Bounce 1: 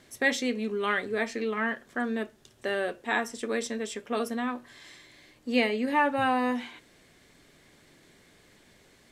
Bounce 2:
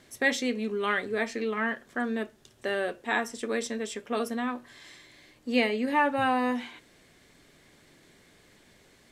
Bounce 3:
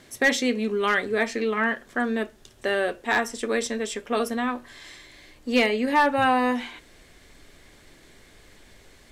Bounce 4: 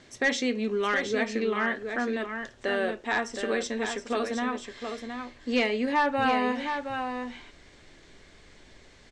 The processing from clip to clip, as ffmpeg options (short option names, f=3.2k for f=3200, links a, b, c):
-af anull
-af "asubboost=boost=5:cutoff=61,volume=17dB,asoftclip=hard,volume=-17dB,volume=5.5dB"
-filter_complex "[0:a]lowpass=f=7.3k:w=0.5412,lowpass=f=7.3k:w=1.3066,asplit=2[a][b];[b]alimiter=limit=-19.5dB:level=0:latency=1:release=212,volume=-2dB[c];[a][c]amix=inputs=2:normalize=0,aecho=1:1:718:0.447,volume=-7dB"